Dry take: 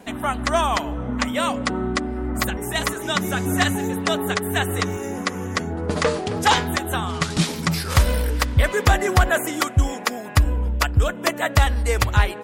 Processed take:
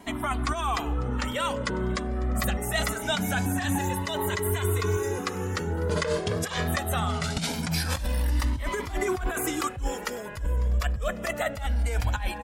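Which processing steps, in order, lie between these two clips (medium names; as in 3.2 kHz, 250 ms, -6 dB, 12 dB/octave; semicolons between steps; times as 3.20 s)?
3.78–5.19 s: comb 2 ms, depth 76%; compressor with a negative ratio -23 dBFS, ratio -1; feedback delay 549 ms, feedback 56%, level -21 dB; Shepard-style flanger rising 0.23 Hz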